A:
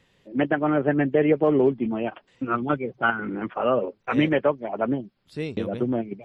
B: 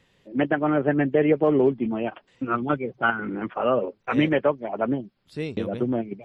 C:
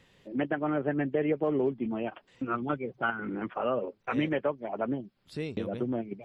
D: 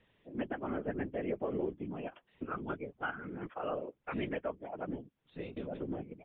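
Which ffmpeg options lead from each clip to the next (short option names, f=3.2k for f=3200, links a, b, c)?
-af anull
-af "acompressor=threshold=-42dB:ratio=1.5,volume=1dB"
-af "aresample=8000,aresample=44100,afftfilt=real='hypot(re,im)*cos(2*PI*random(0))':imag='hypot(re,im)*sin(2*PI*random(1))':win_size=512:overlap=0.75,volume=-2dB"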